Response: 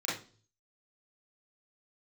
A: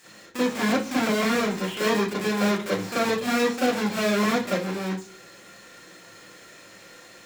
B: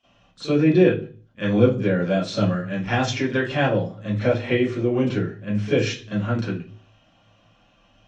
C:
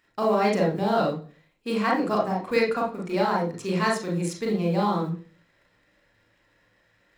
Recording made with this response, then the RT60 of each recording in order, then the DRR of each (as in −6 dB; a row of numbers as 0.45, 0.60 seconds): A; 0.40, 0.40, 0.40 seconds; −8.5, −15.0, −1.0 decibels